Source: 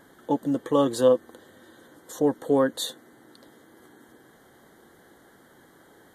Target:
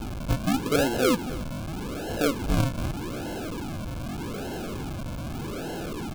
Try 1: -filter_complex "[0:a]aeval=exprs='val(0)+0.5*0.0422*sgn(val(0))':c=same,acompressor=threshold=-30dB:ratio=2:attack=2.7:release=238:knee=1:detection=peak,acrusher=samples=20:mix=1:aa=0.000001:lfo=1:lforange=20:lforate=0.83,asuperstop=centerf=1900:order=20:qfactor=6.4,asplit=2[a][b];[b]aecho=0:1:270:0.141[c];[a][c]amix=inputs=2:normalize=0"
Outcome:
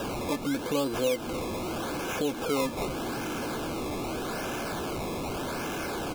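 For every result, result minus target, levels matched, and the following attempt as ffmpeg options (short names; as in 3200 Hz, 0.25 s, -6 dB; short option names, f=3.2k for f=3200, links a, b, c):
decimation with a swept rate: distortion -20 dB; compressor: peak gain reduction +5 dB
-filter_complex "[0:a]aeval=exprs='val(0)+0.5*0.0422*sgn(val(0))':c=same,acompressor=threshold=-30dB:ratio=2:attack=2.7:release=238:knee=1:detection=peak,acrusher=samples=73:mix=1:aa=0.000001:lfo=1:lforange=73:lforate=0.83,asuperstop=centerf=1900:order=20:qfactor=6.4,asplit=2[a][b];[b]aecho=0:1:270:0.141[c];[a][c]amix=inputs=2:normalize=0"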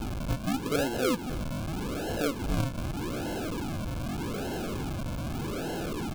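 compressor: peak gain reduction +5 dB
-filter_complex "[0:a]aeval=exprs='val(0)+0.5*0.0422*sgn(val(0))':c=same,acompressor=threshold=-20dB:ratio=2:attack=2.7:release=238:knee=1:detection=peak,acrusher=samples=73:mix=1:aa=0.000001:lfo=1:lforange=73:lforate=0.83,asuperstop=centerf=1900:order=20:qfactor=6.4,asplit=2[a][b];[b]aecho=0:1:270:0.141[c];[a][c]amix=inputs=2:normalize=0"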